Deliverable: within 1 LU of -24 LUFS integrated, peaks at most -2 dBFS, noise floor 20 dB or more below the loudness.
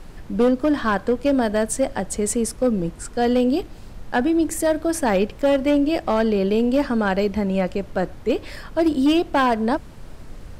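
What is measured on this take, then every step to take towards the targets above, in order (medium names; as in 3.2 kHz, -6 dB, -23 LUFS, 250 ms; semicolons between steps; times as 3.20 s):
clipped samples 1.4%; clipping level -12.0 dBFS; noise floor -40 dBFS; noise floor target -41 dBFS; loudness -21.0 LUFS; peak level -12.0 dBFS; loudness target -24.0 LUFS
-> clip repair -12 dBFS; noise print and reduce 6 dB; trim -3 dB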